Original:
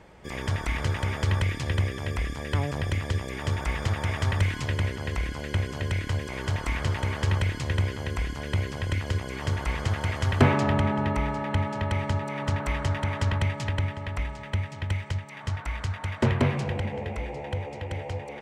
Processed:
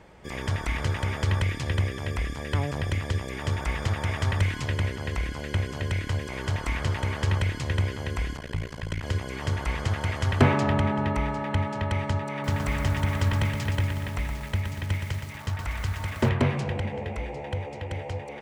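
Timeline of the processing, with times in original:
8.37–9.03 s: AM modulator 56 Hz, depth 100%
12.32–16.29 s: bit-crushed delay 119 ms, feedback 55%, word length 7-bit, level -6 dB

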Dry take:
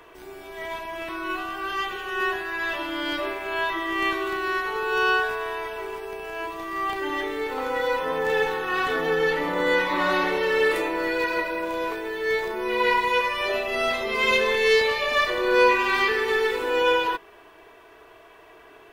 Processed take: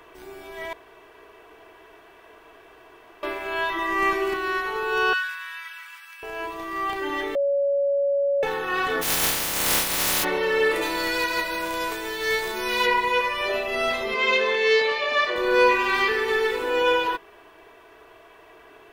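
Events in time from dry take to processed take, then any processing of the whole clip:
0.73–3.23 s: room tone
3.78–4.34 s: comb 5 ms, depth 87%
5.13–6.23 s: steep high-pass 1.3 kHz
7.35–8.43 s: bleep 562 Hz -19 dBFS
9.01–10.23 s: spectral contrast reduction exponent 0.11
10.81–12.85 s: formants flattened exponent 0.6
14.14–15.36 s: three-band isolator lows -16 dB, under 220 Hz, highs -17 dB, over 6.6 kHz

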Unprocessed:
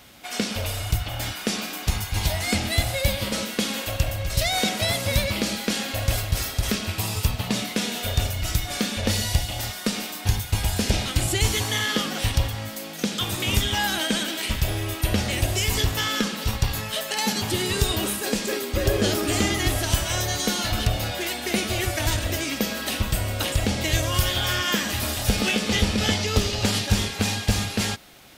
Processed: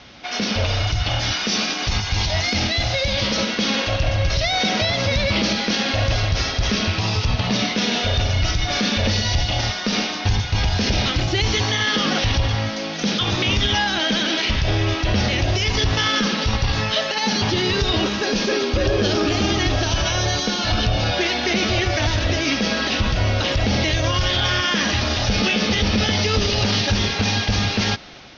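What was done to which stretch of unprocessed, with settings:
0.87–3.37 s: treble shelf 5 kHz +10 dB
18.31–21.21 s: band-stop 2 kHz
whole clip: peak limiter -19.5 dBFS; steep low-pass 6.1 kHz 96 dB/octave; level rider gain up to 3.5 dB; trim +6 dB

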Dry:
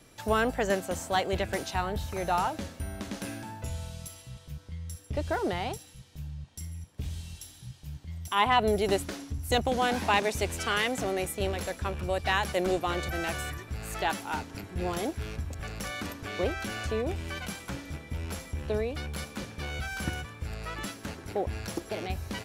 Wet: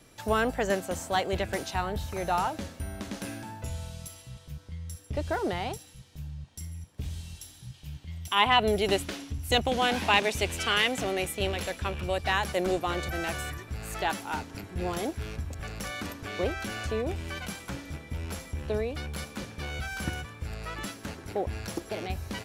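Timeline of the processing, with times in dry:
7.74–12.17 s: peaking EQ 2.9 kHz +6.5 dB 0.96 oct

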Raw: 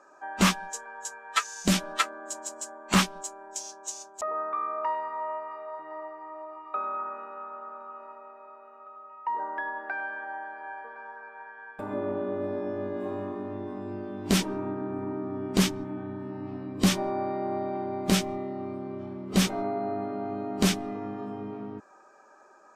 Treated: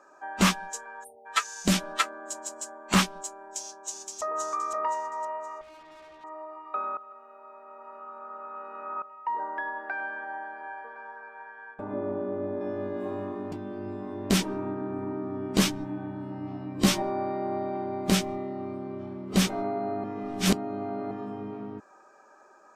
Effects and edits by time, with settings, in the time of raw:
1.04–1.26 s: spectral selection erased 910–8600 Hz
3.41–4.35 s: echo throw 520 ms, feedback 30%, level -4 dB
5.61–6.24 s: valve stage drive 48 dB, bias 0.6
6.97–9.02 s: reverse
10.00–10.68 s: bass shelf 150 Hz +10.5 dB
11.74–12.61 s: low-pass 1.2 kHz 6 dB/octave
13.52–14.30 s: reverse
15.55–17.02 s: doubling 14 ms -3.5 dB
20.04–21.11 s: reverse

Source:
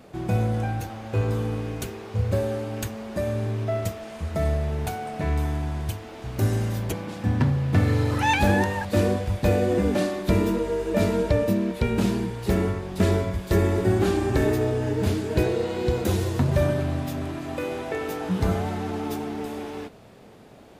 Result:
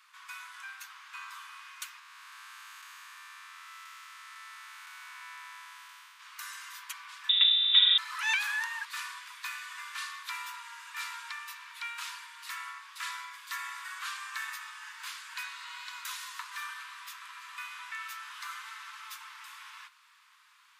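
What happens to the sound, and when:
1.99–6.20 s: spectral blur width 474 ms
7.29–7.98 s: frequency inversion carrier 3.7 kHz
17.92–19.19 s: high-pass 890 Hz
whole clip: steep high-pass 990 Hz 96 dB/octave; treble shelf 10 kHz -4.5 dB; trim -2.5 dB

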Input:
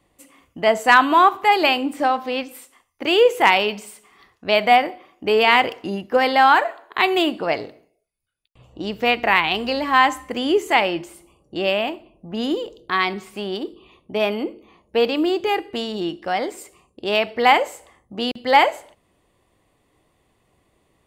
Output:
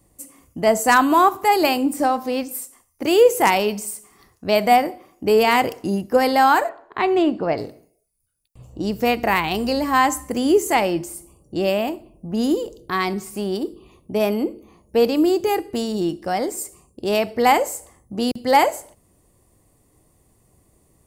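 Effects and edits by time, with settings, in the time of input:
6.69–7.58 s: Bessel low-pass 2.4 kHz
whole clip: FFT filter 110 Hz 0 dB, 3.4 kHz -15 dB, 5.2 kHz -2 dB, 10 kHz +5 dB; trim +8 dB

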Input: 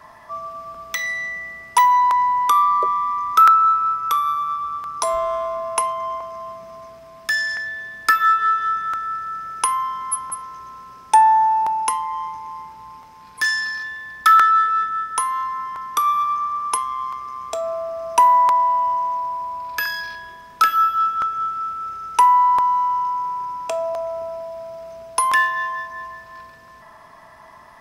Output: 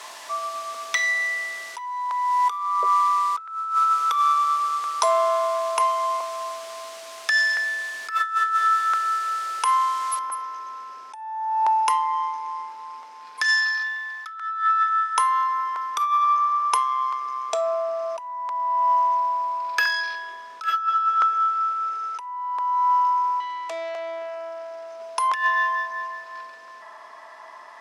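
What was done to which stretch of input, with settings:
2.83–3.83 s: band-pass 210–3300 Hz
4.76–7.52 s: high-pass 190 Hz
10.19 s: noise floor step -41 dB -68 dB
13.44–15.14 s: brick-wall FIR high-pass 660 Hz
23.40–25.00 s: valve stage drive 30 dB, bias 0.55
whole clip: low-pass 7 kHz 12 dB/octave; compressor with a negative ratio -20 dBFS, ratio -0.5; Bessel high-pass 500 Hz, order 4

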